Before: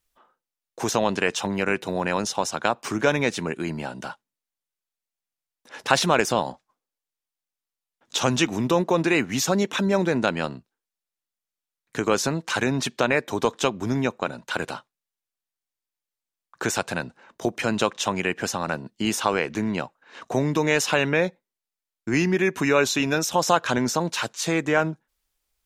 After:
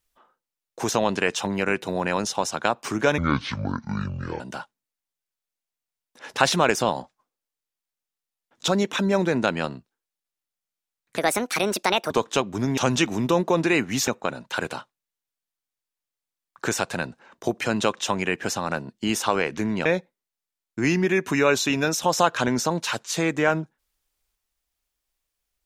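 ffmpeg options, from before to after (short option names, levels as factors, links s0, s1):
-filter_complex "[0:a]asplit=9[s0][s1][s2][s3][s4][s5][s6][s7][s8];[s0]atrim=end=3.184[s9];[s1]atrim=start=3.18:end=3.9,asetpts=PTS-STARTPTS,asetrate=26019,aresample=44100[s10];[s2]atrim=start=3.896:end=8.182[s11];[s3]atrim=start=9.478:end=11.974[s12];[s4]atrim=start=11.97:end=13.38,asetpts=PTS-STARTPTS,asetrate=66591,aresample=44100,atrim=end_sample=41179,asetpts=PTS-STARTPTS[s13];[s5]atrim=start=13.376:end=14.052[s14];[s6]atrim=start=8.178:end=9.482[s15];[s7]atrim=start=14.048:end=19.832[s16];[s8]atrim=start=21.148[s17];[s9][s10]acrossfade=d=0.004:c1=hsin:c2=hsin[s18];[s18][s11]acrossfade=d=0.004:c1=hsin:c2=hsin[s19];[s19][s12]acrossfade=d=0.004:c1=hsin:c2=hsin[s20];[s20][s13]acrossfade=d=0.004:c1=hsin:c2=hsin[s21];[s21][s14]acrossfade=d=0.004:c1=hsin:c2=hsin[s22];[s22][s15]acrossfade=d=0.004:c1=hsin:c2=hsin[s23];[s23][s16]acrossfade=d=0.004:c1=hsin:c2=hsin[s24];[s24][s17]acrossfade=d=0.004:c1=hsin:c2=hsin"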